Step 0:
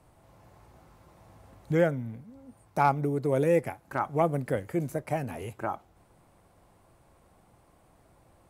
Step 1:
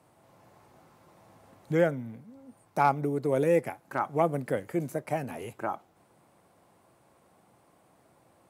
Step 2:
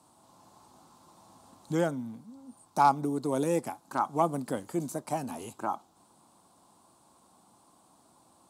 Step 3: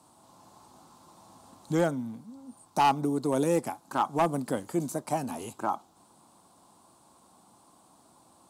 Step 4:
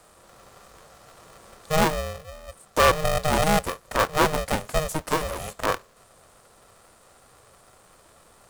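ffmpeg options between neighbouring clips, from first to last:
-af "highpass=150"
-af "equalizer=f=125:t=o:w=1:g=-5,equalizer=f=250:t=o:w=1:g=6,equalizer=f=500:t=o:w=1:g=-7,equalizer=f=1000:t=o:w=1:g=9,equalizer=f=2000:t=o:w=1:g=-12,equalizer=f=4000:t=o:w=1:g=8,equalizer=f=8000:t=o:w=1:g=10,volume=0.841"
-af "asoftclip=type=hard:threshold=0.1,volume=1.33"
-af "aeval=exprs='val(0)*sgn(sin(2*PI*310*n/s))':c=same,volume=1.78"

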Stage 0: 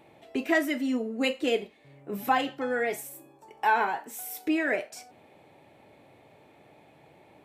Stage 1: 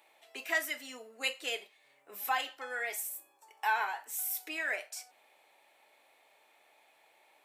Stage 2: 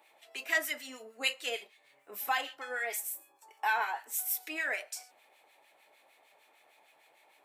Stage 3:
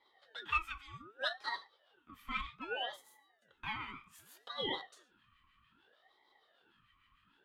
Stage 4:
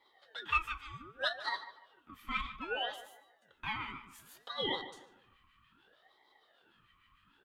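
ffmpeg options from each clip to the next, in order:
-af "highpass=890,highshelf=f=4700:g=9,volume=0.596"
-filter_complex "[0:a]acrossover=split=1400[s0][s1];[s0]aeval=exprs='val(0)*(1-0.7/2+0.7/2*cos(2*PI*6.6*n/s))':c=same[s2];[s1]aeval=exprs='val(0)*(1-0.7/2-0.7/2*cos(2*PI*6.6*n/s))':c=same[s3];[s2][s3]amix=inputs=2:normalize=0,volume=1.68"
-filter_complex "[0:a]asplit=3[s0][s1][s2];[s0]bandpass=f=530:t=q:w=8,volume=1[s3];[s1]bandpass=f=1840:t=q:w=8,volume=0.501[s4];[s2]bandpass=f=2480:t=q:w=8,volume=0.355[s5];[s3][s4][s5]amix=inputs=3:normalize=0,aeval=exprs='val(0)*sin(2*PI*980*n/s+980*0.45/0.64*sin(2*PI*0.64*n/s))':c=same,volume=2.51"
-filter_complex "[0:a]asplit=2[s0][s1];[s1]adelay=149,lowpass=f=2200:p=1,volume=0.251,asplit=2[s2][s3];[s3]adelay=149,lowpass=f=2200:p=1,volume=0.36,asplit=2[s4][s5];[s5]adelay=149,lowpass=f=2200:p=1,volume=0.36,asplit=2[s6][s7];[s7]adelay=149,lowpass=f=2200:p=1,volume=0.36[s8];[s0][s2][s4][s6][s8]amix=inputs=5:normalize=0,volume=1.33"

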